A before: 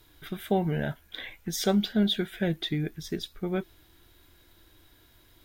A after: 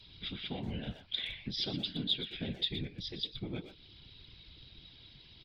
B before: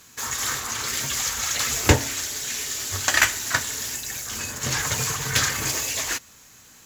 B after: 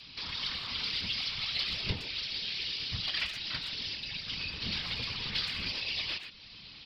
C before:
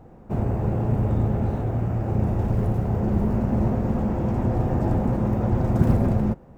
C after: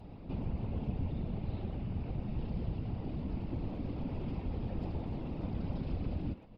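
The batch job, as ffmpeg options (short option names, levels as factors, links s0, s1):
-filter_complex "[0:a]acompressor=threshold=0.00891:ratio=2,aresample=11025,asoftclip=type=tanh:threshold=0.0473,aresample=44100,asplit=2[s0][s1];[s1]adelay=120,highpass=300,lowpass=3400,asoftclip=type=hard:threshold=0.0188,volume=0.447[s2];[s0][s2]amix=inputs=2:normalize=0,aexciter=amount=6.4:drive=8.8:freq=2500,bass=f=250:g=9,treble=f=4000:g=-13,afftfilt=real='hypot(re,im)*cos(2*PI*random(0))':imag='hypot(re,im)*sin(2*PI*random(1))':win_size=512:overlap=0.75,adynamicequalizer=threshold=0.00398:dfrequency=150:dqfactor=0.73:tfrequency=150:tqfactor=0.73:attack=5:release=100:ratio=0.375:range=2.5:mode=cutabove:tftype=bell"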